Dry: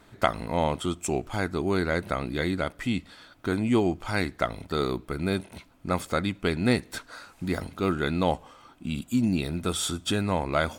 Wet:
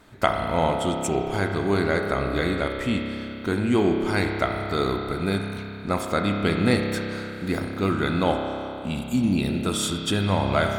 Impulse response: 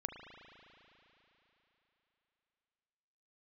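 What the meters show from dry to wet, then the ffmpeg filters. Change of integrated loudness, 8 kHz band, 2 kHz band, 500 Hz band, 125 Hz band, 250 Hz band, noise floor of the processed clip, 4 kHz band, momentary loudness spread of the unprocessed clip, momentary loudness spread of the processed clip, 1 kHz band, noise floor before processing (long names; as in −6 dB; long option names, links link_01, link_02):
+3.5 dB, +2.0 dB, +4.0 dB, +4.0 dB, +4.0 dB, +3.5 dB, −35 dBFS, +3.5 dB, 9 LU, 7 LU, +4.0 dB, −56 dBFS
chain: -filter_complex "[1:a]atrim=start_sample=2205,asetrate=52920,aresample=44100[link_01];[0:a][link_01]afir=irnorm=-1:irlink=0,volume=6dB"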